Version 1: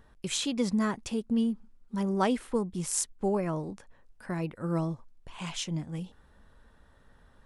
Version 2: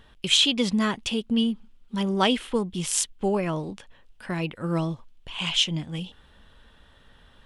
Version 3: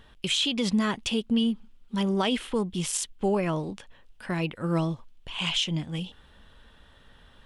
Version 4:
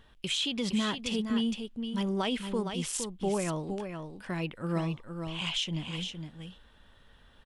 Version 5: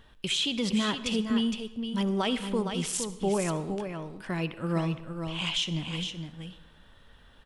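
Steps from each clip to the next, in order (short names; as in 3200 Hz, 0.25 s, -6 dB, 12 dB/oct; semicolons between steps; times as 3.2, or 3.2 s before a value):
bell 3100 Hz +14.5 dB 0.83 oct; gain +3.5 dB
limiter -16.5 dBFS, peak gain reduction 10 dB
echo 0.463 s -7 dB; gain -5 dB
reverb RT60 1.0 s, pre-delay 60 ms, DRR 14 dB; gain +2.5 dB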